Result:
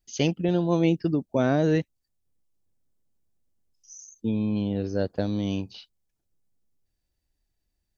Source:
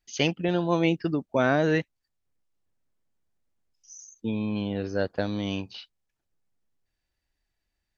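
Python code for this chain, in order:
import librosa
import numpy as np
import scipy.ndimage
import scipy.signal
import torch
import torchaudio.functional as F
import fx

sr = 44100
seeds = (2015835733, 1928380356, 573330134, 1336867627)

y = fx.peak_eq(x, sr, hz=1700.0, db=-11.0, octaves=2.7)
y = y * 10.0 ** (4.0 / 20.0)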